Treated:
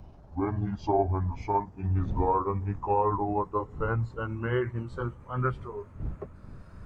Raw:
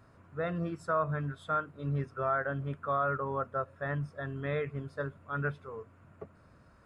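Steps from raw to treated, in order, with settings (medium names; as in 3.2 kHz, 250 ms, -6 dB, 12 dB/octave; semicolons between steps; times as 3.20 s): pitch bend over the whole clip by -9.5 st ending unshifted; wind noise 100 Hz -47 dBFS; trim +6 dB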